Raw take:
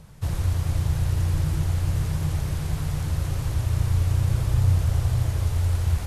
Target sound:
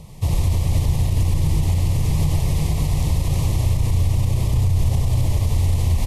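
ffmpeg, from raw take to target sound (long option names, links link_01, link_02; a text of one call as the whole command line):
ffmpeg -i in.wav -filter_complex "[0:a]asuperstop=centerf=1500:order=4:qfactor=1.8,asplit=2[link_01][link_02];[link_02]asplit=4[link_03][link_04][link_05][link_06];[link_03]adelay=91,afreqshift=-110,volume=-5dB[link_07];[link_04]adelay=182,afreqshift=-220,volume=-15.5dB[link_08];[link_05]adelay=273,afreqshift=-330,volume=-25.9dB[link_09];[link_06]adelay=364,afreqshift=-440,volume=-36.4dB[link_10];[link_07][link_08][link_09][link_10]amix=inputs=4:normalize=0[link_11];[link_01][link_11]amix=inputs=2:normalize=0,alimiter=limit=-17.5dB:level=0:latency=1:release=56,volume=7dB" out.wav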